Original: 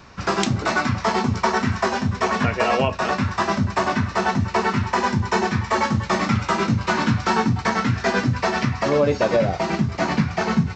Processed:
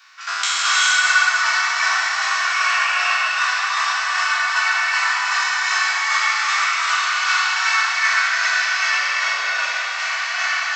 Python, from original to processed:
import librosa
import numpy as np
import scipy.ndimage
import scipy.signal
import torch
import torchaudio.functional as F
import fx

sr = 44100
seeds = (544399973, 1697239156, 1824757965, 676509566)

y = fx.spec_trails(x, sr, decay_s=2.59)
y = scipy.signal.sosfilt(scipy.signal.butter(4, 1300.0, 'highpass', fs=sr, output='sos'), y)
y = y + 0.38 * np.pad(y, (int(2.7 * sr / 1000.0), 0))[:len(y)]
y = fx.rev_gated(y, sr, seeds[0], gate_ms=420, shape='rising', drr_db=-3.5)
y = y * 10.0 ** (-1.5 / 20.0)